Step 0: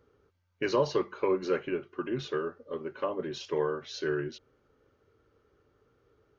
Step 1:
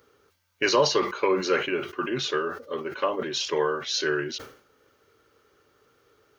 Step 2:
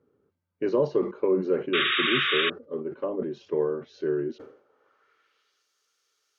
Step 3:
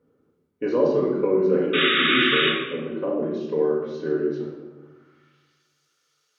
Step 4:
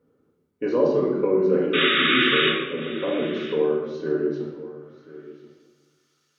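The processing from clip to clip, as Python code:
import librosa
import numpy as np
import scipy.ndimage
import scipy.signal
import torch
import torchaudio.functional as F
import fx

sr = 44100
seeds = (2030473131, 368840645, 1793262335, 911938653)

y1 = fx.tilt_eq(x, sr, slope=3.0)
y1 = fx.sustainer(y1, sr, db_per_s=110.0)
y1 = F.gain(torch.from_numpy(y1), 7.5).numpy()
y2 = fx.dynamic_eq(y1, sr, hz=470.0, q=0.81, threshold_db=-36.0, ratio=4.0, max_db=6)
y2 = fx.filter_sweep_bandpass(y2, sr, from_hz=200.0, to_hz=6200.0, start_s=4.19, end_s=5.68, q=1.3)
y2 = fx.spec_paint(y2, sr, seeds[0], shape='noise', start_s=1.73, length_s=0.77, low_hz=1100.0, high_hz=3800.0, level_db=-27.0)
y2 = F.gain(torch.from_numpy(y2), 2.0).numpy()
y3 = fx.room_shoebox(y2, sr, seeds[1], volume_m3=640.0, walls='mixed', distance_m=1.9)
y4 = y3 + 10.0 ** (-17.5 / 20.0) * np.pad(y3, (int(1034 * sr / 1000.0), 0))[:len(y3)]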